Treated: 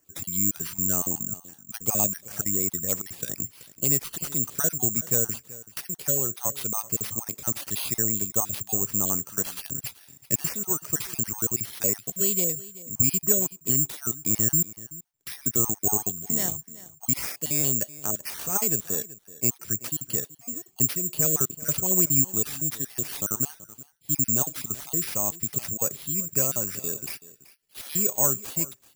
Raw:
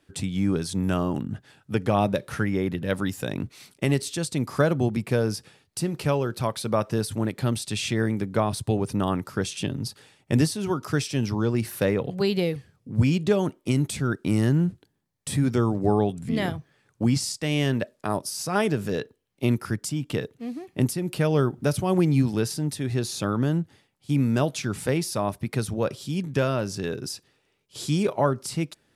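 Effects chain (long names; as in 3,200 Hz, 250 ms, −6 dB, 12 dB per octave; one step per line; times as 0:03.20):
time-frequency cells dropped at random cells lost 33%
single-tap delay 380 ms −18.5 dB
bad sample-rate conversion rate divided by 6×, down none, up zero stuff
level −8 dB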